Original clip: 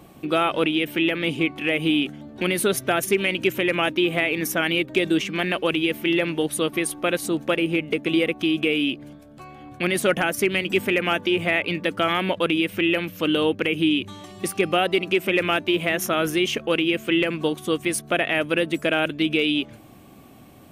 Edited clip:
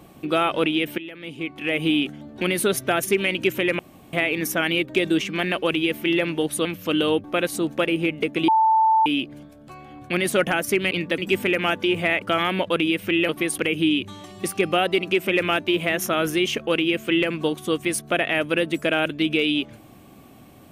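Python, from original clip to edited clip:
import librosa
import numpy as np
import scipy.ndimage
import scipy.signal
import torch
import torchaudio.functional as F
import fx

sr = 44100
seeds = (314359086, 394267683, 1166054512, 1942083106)

y = fx.edit(x, sr, fx.fade_in_from(start_s=0.98, length_s=0.8, curve='qua', floor_db=-16.0),
    fx.room_tone_fill(start_s=3.79, length_s=0.34),
    fx.swap(start_s=6.65, length_s=0.29, other_s=12.99, other_length_s=0.59),
    fx.bleep(start_s=8.18, length_s=0.58, hz=885.0, db=-14.0),
    fx.move(start_s=11.65, length_s=0.27, to_s=10.61), tone=tone)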